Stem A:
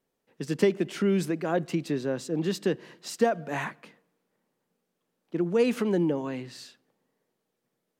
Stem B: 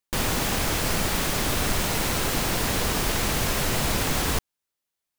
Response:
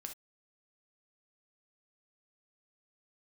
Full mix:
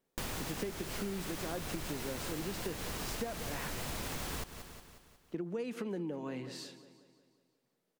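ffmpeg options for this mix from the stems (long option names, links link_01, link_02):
-filter_complex "[0:a]volume=-2dB,asplit=2[link_01][link_02];[link_02]volume=-17.5dB[link_03];[1:a]adelay=50,volume=-7dB,asplit=2[link_04][link_05];[link_05]volume=-15.5dB[link_06];[link_03][link_06]amix=inputs=2:normalize=0,aecho=0:1:181|362|543|724|905|1086|1267|1448:1|0.53|0.281|0.149|0.0789|0.0418|0.0222|0.0117[link_07];[link_01][link_04][link_07]amix=inputs=3:normalize=0,acompressor=threshold=-36dB:ratio=6"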